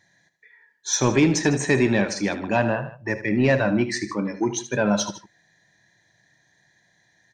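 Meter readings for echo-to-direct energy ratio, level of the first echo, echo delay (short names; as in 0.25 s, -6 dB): -11.0 dB, -12.5 dB, 77 ms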